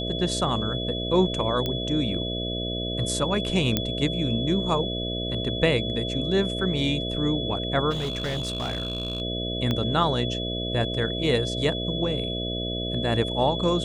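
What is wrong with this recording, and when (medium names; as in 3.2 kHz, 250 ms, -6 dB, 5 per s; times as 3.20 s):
buzz 60 Hz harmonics 11 -31 dBFS
whine 3.4 kHz -31 dBFS
1.66 s: pop -14 dBFS
3.77 s: pop -7 dBFS
7.90–9.22 s: clipped -24.5 dBFS
9.71 s: pop -13 dBFS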